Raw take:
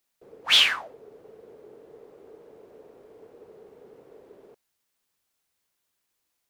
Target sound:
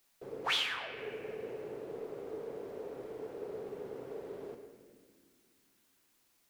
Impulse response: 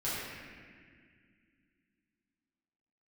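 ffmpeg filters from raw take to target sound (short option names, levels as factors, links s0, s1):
-filter_complex "[0:a]acompressor=threshold=0.0112:ratio=5,asplit=2[s0][s1];[1:a]atrim=start_sample=2205[s2];[s1][s2]afir=irnorm=-1:irlink=0,volume=0.335[s3];[s0][s3]amix=inputs=2:normalize=0,volume=1.58"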